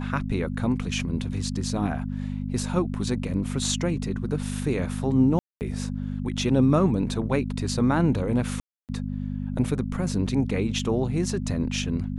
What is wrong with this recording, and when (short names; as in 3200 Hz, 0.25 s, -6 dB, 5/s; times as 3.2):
hum 50 Hz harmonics 5 -30 dBFS
5.39–5.61 gap 0.219 s
8.6–8.89 gap 0.288 s
10.79 gap 2.9 ms